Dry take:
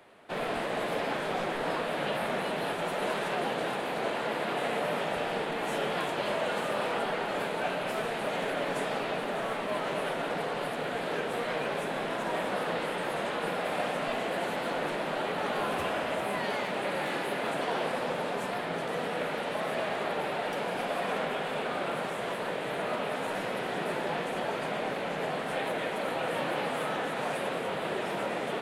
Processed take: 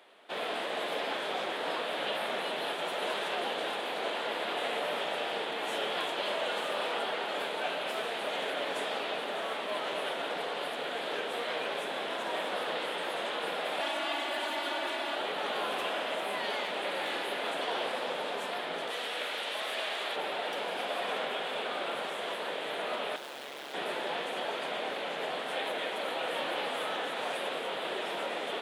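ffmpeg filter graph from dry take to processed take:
-filter_complex "[0:a]asettb=1/sr,asplit=3[s0][s1][s2];[s0]atrim=end=13.804[s3];[s1]atrim=start=13.8:end=15.16,asetpts=PTS-STARTPTS,afade=t=in:d=0.004:c=qsin,afade=t=out:st=1.356:d=0.004:c=qsin,equalizer=f=420:w=2.7:g=-8.5,aecho=1:1:3.6:0.66,atrim=end_sample=59976,afreqshift=52[s4];[s2]atrim=start=15.156[s5];[s3][s4]acrossfade=d=0.004:c1=hsin:c2=qsin[s6];[s6][s5]acrossfade=d=0.004:c1=qsin:c2=hsin,asettb=1/sr,asplit=3[s7][s8][s9];[s7]atrim=end=18.904[s10];[s8]atrim=start=18.9:end=20.16,asetpts=PTS-STARTPTS,afade=t=in:d=0.004:c=qsin,afade=t=out:st=1.256:d=0.004:c=qsin,highpass=200,tiltshelf=f=1500:g=-5[s11];[s9]atrim=start=20.156[s12];[s10][s11]acrossfade=d=0.004:c1=hsin:c2=qsin[s13];[s13][s12]acrossfade=d=0.004:c1=qsin:c2=hsin,asettb=1/sr,asplit=3[s14][s15][s16];[s14]atrim=end=23.164[s17];[s15]atrim=start=23.16:end=23.74,asetpts=PTS-STARTPTS,afade=t=in:d=0.004:c=qsin,afade=t=out:st=0.576:d=0.004:c=qsin,acrusher=bits=6:mix=0:aa=0.5,asoftclip=type=hard:threshold=0.015,aeval=exprs='val(0)*sin(2*PI*70*n/s)':c=same[s18];[s16]atrim=start=23.736[s19];[s17][s18]acrossfade=d=0.004:c1=hsin:c2=qsin[s20];[s20][s19]acrossfade=d=0.004:c1=qsin:c2=hsin,highpass=330,equalizer=f=3400:w=2.2:g=8,volume=0.75"

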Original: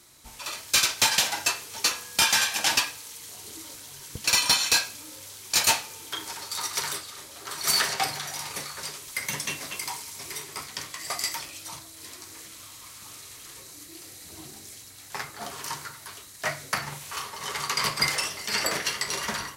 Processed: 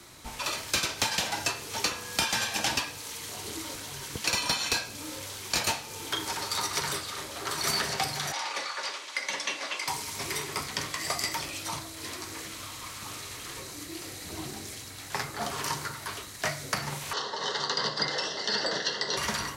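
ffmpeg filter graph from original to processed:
-filter_complex "[0:a]asettb=1/sr,asplit=3[s0][s1][s2];[s0]atrim=end=8.324[s3];[s1]atrim=start=8.32:end=9.88,asetpts=PTS-STARTPTS,afade=t=in:d=0.004:c=qsin,afade=t=out:st=1.556:d=0.004:c=qsin,highpass=610,lowpass=5000,aecho=1:1:3.5:0.33,atrim=end_sample=68796[s4];[s2]atrim=start=9.876[s5];[s3][s4]acrossfade=d=0.004:c1=hsin:c2=qsin[s6];[s6][s5]acrossfade=d=0.004:c1=qsin:c2=hsin,asettb=1/sr,asplit=3[s7][s8][s9];[s7]atrim=end=17.134[s10];[s8]atrim=start=17.13:end=19.17,asetpts=PTS-STARTPTS,afade=t=in:d=0.004:c=qsin,afade=t=out:st=2.036:d=0.004:c=qsin,asuperstop=centerf=2300:order=4:qfactor=1.9,highpass=250,equalizer=f=490:t=q:w=4:g=5,equalizer=f=1200:t=q:w=4:g=-7,equalizer=f=2100:t=q:w=4:g=9,equalizer=f=4000:t=q:w=4:g=5,lowpass=f=5700:w=0.5412,lowpass=f=5700:w=1.3066[s11];[s9]atrim=start=19.166[s12];[s10][s11]acrossfade=d=0.004:c1=hsin:c2=qsin[s13];[s13][s12]acrossfade=d=0.004:c1=qsin:c2=hsin,highshelf=f=4800:g=-10,acrossover=split=190|640|3600[s14][s15][s16][s17];[s14]acompressor=threshold=0.00316:ratio=4[s18];[s15]acompressor=threshold=0.00398:ratio=4[s19];[s16]acompressor=threshold=0.00708:ratio=4[s20];[s17]acompressor=threshold=0.01:ratio=4[s21];[s18][s19][s20][s21]amix=inputs=4:normalize=0,volume=2.82"

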